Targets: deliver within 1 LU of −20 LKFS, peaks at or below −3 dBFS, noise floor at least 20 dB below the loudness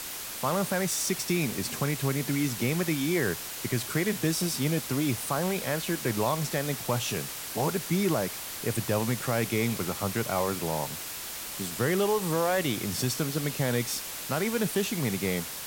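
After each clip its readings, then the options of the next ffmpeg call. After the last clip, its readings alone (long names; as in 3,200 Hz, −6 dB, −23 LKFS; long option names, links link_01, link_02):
background noise floor −38 dBFS; target noise floor −49 dBFS; integrated loudness −28.5 LKFS; sample peak −14.0 dBFS; target loudness −20.0 LKFS
→ -af "afftdn=noise_reduction=11:noise_floor=-38"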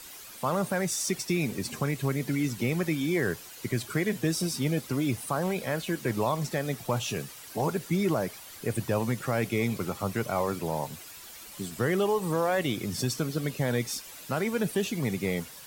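background noise floor −46 dBFS; target noise floor −50 dBFS
→ -af "afftdn=noise_reduction=6:noise_floor=-46"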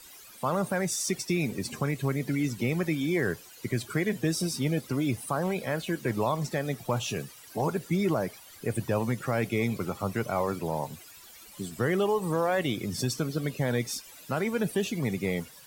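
background noise floor −50 dBFS; integrated loudness −30.0 LKFS; sample peak −15.5 dBFS; target loudness −20.0 LKFS
→ -af "volume=10dB"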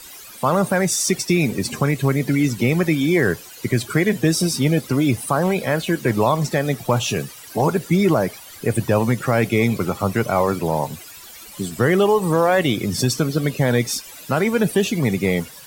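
integrated loudness −20.0 LKFS; sample peak −5.5 dBFS; background noise floor −40 dBFS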